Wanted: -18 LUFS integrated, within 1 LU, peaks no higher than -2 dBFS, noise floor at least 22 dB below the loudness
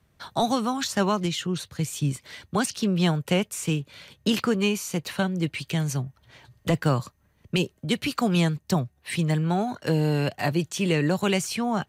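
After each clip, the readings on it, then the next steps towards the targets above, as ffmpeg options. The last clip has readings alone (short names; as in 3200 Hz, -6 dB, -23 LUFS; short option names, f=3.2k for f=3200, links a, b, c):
loudness -26.0 LUFS; peak -11.5 dBFS; loudness target -18.0 LUFS
-> -af "volume=8dB"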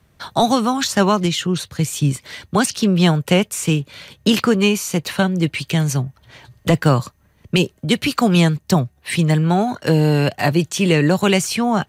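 loudness -18.0 LUFS; peak -3.5 dBFS; noise floor -58 dBFS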